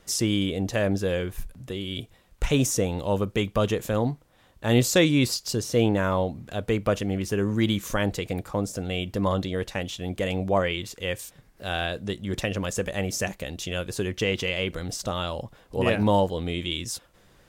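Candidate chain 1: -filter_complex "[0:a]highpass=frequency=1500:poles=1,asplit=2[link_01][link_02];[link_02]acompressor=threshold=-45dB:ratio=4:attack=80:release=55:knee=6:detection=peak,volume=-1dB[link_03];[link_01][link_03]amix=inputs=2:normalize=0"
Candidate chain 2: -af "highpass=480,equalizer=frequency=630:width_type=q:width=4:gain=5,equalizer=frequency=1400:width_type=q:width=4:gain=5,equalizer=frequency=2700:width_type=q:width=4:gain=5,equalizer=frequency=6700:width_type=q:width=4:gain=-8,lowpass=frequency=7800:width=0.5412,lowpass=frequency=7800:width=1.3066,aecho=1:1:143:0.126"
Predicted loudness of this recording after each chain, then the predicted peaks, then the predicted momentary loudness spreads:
−30.0, −28.0 LKFS; −10.0, −7.0 dBFS; 9, 11 LU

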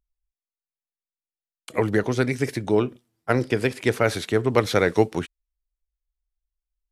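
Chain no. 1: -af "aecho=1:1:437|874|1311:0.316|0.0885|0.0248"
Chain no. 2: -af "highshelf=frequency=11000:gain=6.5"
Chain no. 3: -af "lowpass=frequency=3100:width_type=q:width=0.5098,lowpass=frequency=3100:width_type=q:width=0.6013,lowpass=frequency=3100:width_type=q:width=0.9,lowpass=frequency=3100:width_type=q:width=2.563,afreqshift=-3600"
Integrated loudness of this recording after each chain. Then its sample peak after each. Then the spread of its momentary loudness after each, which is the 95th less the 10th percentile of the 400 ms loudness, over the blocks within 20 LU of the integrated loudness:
−23.5, −23.5, −20.0 LKFS; −2.5, −2.0, −4.0 dBFS; 11, 10, 9 LU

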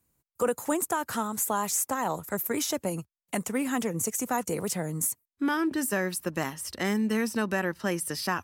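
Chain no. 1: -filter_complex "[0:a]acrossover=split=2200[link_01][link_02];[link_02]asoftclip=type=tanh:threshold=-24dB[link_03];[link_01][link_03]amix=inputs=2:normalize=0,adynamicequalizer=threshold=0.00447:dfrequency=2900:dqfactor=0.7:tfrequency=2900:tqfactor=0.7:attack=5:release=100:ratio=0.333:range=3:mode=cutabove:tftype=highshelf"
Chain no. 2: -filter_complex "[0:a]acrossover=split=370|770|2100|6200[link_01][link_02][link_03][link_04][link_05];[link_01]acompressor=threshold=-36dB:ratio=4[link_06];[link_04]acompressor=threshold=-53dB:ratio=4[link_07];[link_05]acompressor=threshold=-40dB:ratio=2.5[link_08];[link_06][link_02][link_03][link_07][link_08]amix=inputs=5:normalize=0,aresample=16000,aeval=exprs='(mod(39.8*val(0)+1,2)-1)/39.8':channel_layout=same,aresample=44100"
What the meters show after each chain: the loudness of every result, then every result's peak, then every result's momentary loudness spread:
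−30.5, −37.5 LKFS; −14.0, −26.0 dBFS; 5, 4 LU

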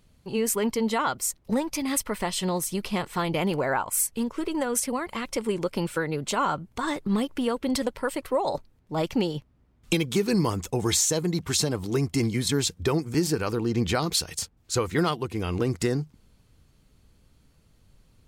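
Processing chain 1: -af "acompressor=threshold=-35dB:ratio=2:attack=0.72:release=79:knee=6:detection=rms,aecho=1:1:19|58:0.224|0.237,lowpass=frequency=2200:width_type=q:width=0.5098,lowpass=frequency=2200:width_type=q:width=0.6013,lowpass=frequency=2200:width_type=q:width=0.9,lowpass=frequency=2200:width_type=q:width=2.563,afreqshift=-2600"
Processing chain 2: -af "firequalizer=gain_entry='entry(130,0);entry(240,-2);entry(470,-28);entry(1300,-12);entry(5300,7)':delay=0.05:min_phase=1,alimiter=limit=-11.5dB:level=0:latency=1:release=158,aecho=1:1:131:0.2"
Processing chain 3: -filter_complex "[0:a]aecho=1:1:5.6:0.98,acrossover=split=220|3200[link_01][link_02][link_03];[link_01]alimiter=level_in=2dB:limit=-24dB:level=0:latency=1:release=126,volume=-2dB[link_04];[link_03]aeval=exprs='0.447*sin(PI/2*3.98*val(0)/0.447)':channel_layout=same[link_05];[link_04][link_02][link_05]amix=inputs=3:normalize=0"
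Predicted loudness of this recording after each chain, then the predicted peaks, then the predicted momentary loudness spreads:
−32.5, −28.0, −17.0 LKFS; −20.5, −11.0, −3.0 dBFS; 5, 12, 11 LU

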